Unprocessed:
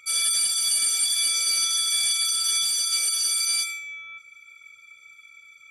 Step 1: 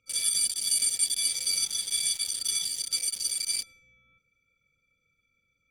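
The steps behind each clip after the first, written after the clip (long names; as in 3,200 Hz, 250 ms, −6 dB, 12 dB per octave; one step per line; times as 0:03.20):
adaptive Wiener filter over 41 samples
parametric band 1,100 Hz −11 dB 2 octaves
level +3 dB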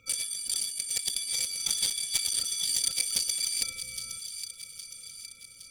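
compressor whose output falls as the input rises −38 dBFS, ratio −1
delay with a high-pass on its return 814 ms, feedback 53%, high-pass 2,700 Hz, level −9.5 dB
level +6 dB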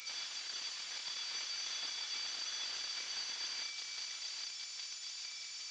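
linear delta modulator 32 kbit/s, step −37.5 dBFS
first difference
level +4 dB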